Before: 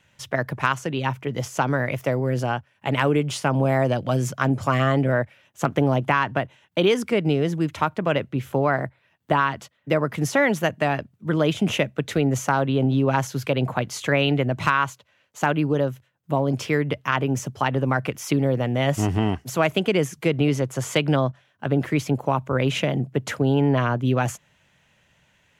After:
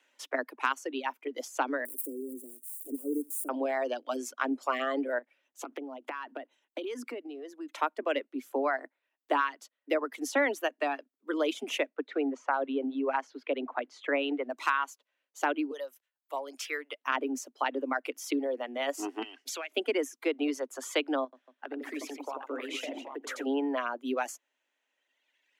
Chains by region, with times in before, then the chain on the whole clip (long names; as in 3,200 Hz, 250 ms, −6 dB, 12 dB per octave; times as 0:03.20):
0:01.85–0:03.49: spike at every zero crossing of −20.5 dBFS + elliptic band-stop filter 380–8,900 Hz
0:05.18–0:07.78: low-shelf EQ 260 Hz +7.5 dB + downward compressor 12 to 1, threshold −24 dBFS
0:11.89–0:14.50: one scale factor per block 7 bits + low-pass filter 2,500 Hz
0:15.71–0:17.01: Bessel high-pass filter 830 Hz + high-shelf EQ 6,000 Hz +5.5 dB
0:19.22–0:19.72: meter weighting curve D + downward compressor 8 to 1, threshold −26 dBFS
0:21.24–0:23.46: downward compressor 2.5 to 1, threshold −27 dBFS + multi-tap delay 87/236/775 ms −4/−7/−5.5 dB
whole clip: reverb reduction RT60 1.9 s; Butterworth high-pass 250 Hz 96 dB per octave; level −6.5 dB